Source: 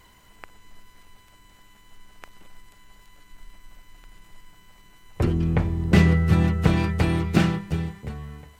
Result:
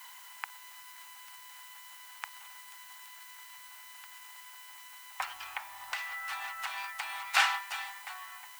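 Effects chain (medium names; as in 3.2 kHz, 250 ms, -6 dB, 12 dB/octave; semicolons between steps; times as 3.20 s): elliptic high-pass 830 Hz, stop band 50 dB; 5.21–7.34 s: compression 12:1, threshold -40 dBFS, peak gain reduction 17 dB; added noise blue -59 dBFS; trim +5 dB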